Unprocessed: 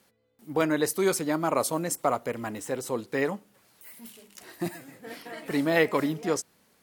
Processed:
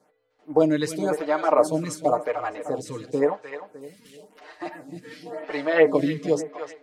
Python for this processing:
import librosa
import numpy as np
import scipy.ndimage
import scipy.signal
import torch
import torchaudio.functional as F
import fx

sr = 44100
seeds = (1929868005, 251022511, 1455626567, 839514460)

y = scipy.signal.sosfilt(scipy.signal.butter(2, 6200.0, 'lowpass', fs=sr, output='sos'), x)
y = fx.peak_eq(y, sr, hz=650.0, db=7.0, octaves=1.1)
y = y + 0.92 * np.pad(y, (int(6.6 * sr / 1000.0), 0))[:len(y)]
y = fx.echo_feedback(y, sr, ms=304, feedback_pct=41, wet_db=-11)
y = fx.stagger_phaser(y, sr, hz=0.94)